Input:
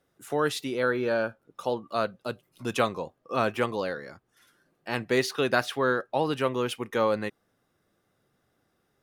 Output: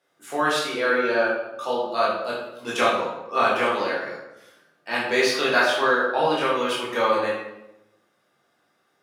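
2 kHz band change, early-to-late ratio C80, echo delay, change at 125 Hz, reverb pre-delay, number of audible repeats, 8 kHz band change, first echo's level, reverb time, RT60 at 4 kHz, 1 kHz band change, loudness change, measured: +8.5 dB, 4.5 dB, no echo, -6.0 dB, 11 ms, no echo, +5.0 dB, no echo, 0.90 s, 0.65 s, +7.5 dB, +5.5 dB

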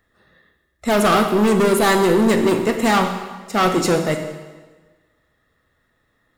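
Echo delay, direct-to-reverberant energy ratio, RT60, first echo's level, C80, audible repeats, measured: no echo, 5.5 dB, 1.4 s, no echo, 9.0 dB, no echo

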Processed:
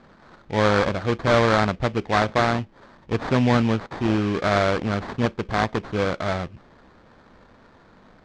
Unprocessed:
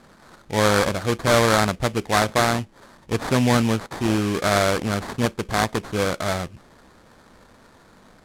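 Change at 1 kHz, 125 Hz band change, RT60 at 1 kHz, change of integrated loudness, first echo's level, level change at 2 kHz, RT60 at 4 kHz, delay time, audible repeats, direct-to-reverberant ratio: -0.5 dB, 0.0 dB, no reverb, -1.0 dB, no echo, -1.5 dB, no reverb, no echo, no echo, no reverb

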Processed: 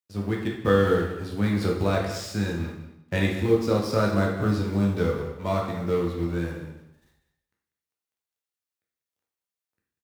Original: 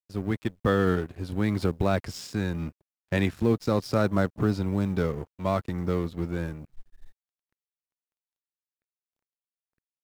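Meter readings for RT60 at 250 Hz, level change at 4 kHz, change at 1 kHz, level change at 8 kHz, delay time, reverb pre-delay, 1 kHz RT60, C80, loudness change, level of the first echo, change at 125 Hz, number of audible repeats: 0.90 s, +3.5 dB, +2.0 dB, +3.5 dB, 193 ms, 9 ms, 0.85 s, 6.0 dB, +2.0 dB, -13.0 dB, +1.5 dB, 1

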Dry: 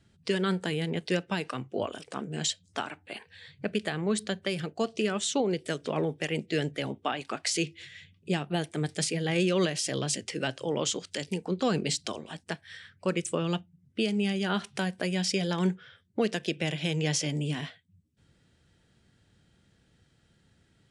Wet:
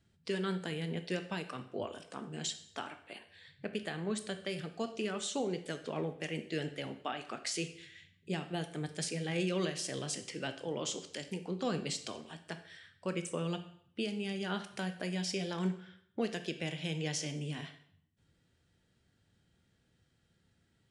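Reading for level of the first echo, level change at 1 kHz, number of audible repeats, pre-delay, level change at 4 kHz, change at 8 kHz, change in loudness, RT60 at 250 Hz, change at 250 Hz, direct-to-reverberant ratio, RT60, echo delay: no echo, -7.5 dB, no echo, 5 ms, -7.5 dB, -7.5 dB, -7.5 dB, 0.70 s, -7.5 dB, 8.0 dB, 0.65 s, no echo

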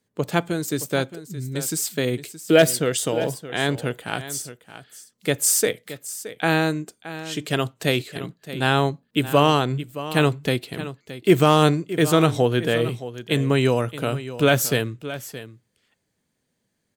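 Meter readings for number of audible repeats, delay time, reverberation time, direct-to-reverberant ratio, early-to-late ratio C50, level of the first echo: 1, 621 ms, no reverb, no reverb, no reverb, -14.0 dB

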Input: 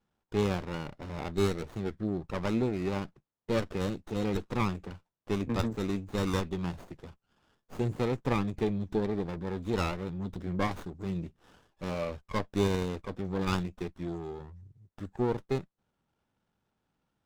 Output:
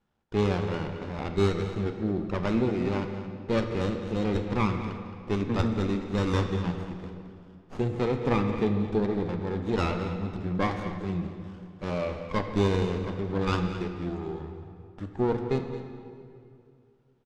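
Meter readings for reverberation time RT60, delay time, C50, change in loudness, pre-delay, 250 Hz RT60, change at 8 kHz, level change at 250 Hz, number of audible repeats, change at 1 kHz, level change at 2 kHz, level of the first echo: 2.4 s, 218 ms, 6.0 dB, +4.0 dB, 10 ms, 2.6 s, no reading, +4.0 dB, 1, +4.0 dB, +3.5 dB, -13.0 dB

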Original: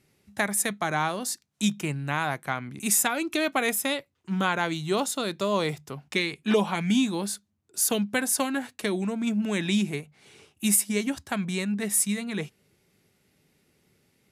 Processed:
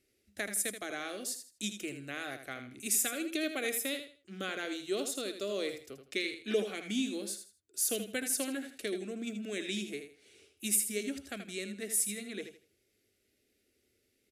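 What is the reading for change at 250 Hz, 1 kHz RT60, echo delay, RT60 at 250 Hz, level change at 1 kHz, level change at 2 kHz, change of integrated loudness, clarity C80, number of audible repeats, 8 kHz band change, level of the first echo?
-11.5 dB, no reverb, 80 ms, no reverb, -17.0 dB, -9.0 dB, -8.0 dB, no reverb, 3, -6.0 dB, -9.0 dB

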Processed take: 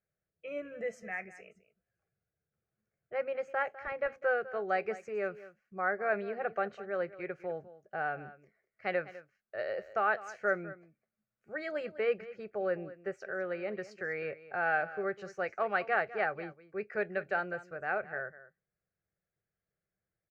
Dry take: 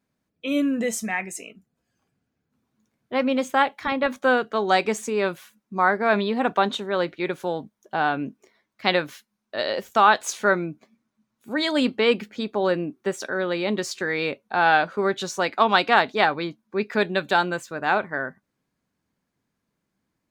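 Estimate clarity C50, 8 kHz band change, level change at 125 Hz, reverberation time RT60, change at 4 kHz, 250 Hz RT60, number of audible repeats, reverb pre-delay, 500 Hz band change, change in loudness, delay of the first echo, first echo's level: no reverb, under -25 dB, -15.0 dB, no reverb, -26.5 dB, no reverb, 1, no reverb, -9.5 dB, -12.0 dB, 202 ms, -16.5 dB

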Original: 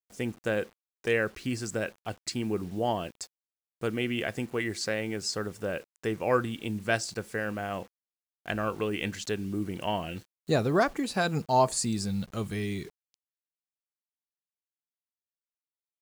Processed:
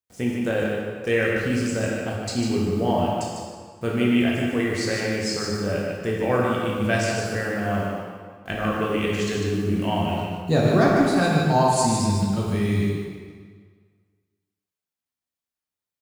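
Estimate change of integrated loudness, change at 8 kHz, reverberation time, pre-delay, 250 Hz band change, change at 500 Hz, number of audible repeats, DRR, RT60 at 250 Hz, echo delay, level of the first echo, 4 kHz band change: +7.5 dB, +4.5 dB, 1.7 s, 9 ms, +10.0 dB, +7.0 dB, 1, -4.5 dB, 1.7 s, 149 ms, -4.5 dB, +5.5 dB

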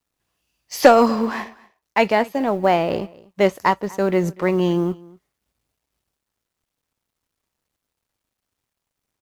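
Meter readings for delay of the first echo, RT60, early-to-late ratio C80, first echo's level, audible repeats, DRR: 242 ms, no reverb, no reverb, -23.0 dB, 1, no reverb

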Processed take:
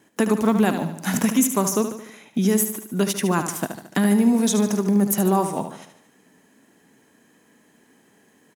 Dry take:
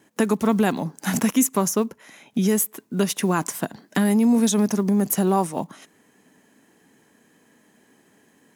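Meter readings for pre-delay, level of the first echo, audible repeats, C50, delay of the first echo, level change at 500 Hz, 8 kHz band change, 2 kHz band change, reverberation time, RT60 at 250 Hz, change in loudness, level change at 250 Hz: no reverb, -9.0 dB, 5, no reverb, 74 ms, +1.0 dB, +0.5 dB, +0.5 dB, no reverb, no reverb, +0.5 dB, +0.5 dB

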